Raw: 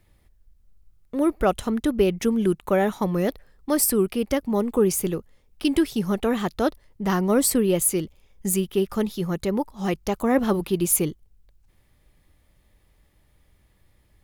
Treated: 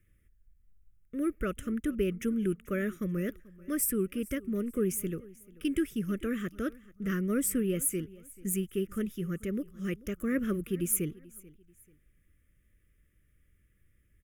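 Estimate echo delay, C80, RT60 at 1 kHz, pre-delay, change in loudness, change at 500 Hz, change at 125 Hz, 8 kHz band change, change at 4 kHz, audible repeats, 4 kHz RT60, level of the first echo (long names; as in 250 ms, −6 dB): 437 ms, no reverb audible, no reverb audible, no reverb audible, −9.0 dB, −11.5 dB, −7.0 dB, −8.5 dB, −14.0 dB, 2, no reverb audible, −21.5 dB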